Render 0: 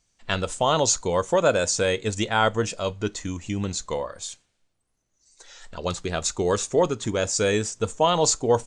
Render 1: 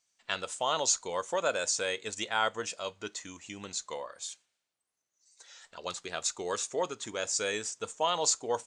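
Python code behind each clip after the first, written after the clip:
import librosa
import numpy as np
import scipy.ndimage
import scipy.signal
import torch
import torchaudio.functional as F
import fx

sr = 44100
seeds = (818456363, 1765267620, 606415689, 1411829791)

y = fx.highpass(x, sr, hz=920.0, slope=6)
y = y * 10.0 ** (-5.0 / 20.0)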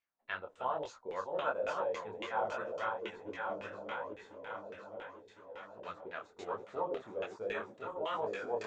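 y = fx.reverse_delay_fb(x, sr, ms=528, feedback_pct=72, wet_db=-3.5)
y = fx.filter_lfo_lowpass(y, sr, shape='saw_down', hz=3.6, low_hz=410.0, high_hz=2500.0, q=2.0)
y = fx.detune_double(y, sr, cents=42)
y = y * 10.0 ** (-5.0 / 20.0)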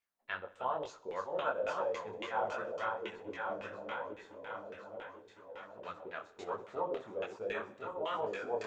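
y = fx.echo_feedback(x, sr, ms=63, feedback_pct=54, wet_db=-18.5)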